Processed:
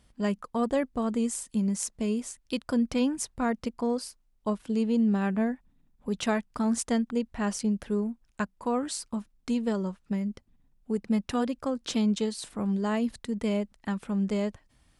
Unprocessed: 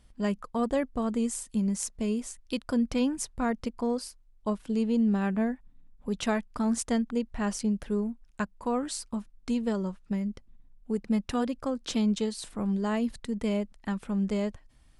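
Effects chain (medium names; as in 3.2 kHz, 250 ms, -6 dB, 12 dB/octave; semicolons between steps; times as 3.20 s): high-pass 71 Hz 6 dB/octave; trim +1 dB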